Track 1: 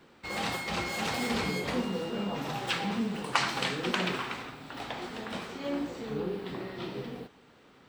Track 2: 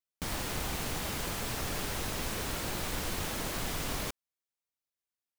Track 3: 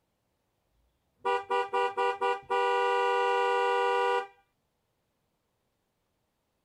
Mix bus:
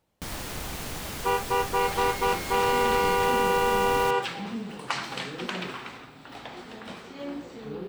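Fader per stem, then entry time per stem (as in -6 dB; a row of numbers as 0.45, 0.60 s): -3.0, 0.0, +3.0 dB; 1.55, 0.00, 0.00 s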